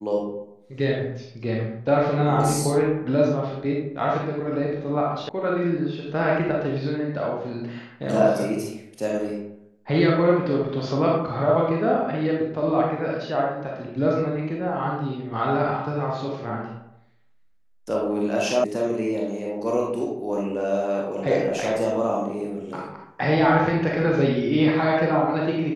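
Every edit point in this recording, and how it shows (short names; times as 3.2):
5.29 sound cut off
18.64 sound cut off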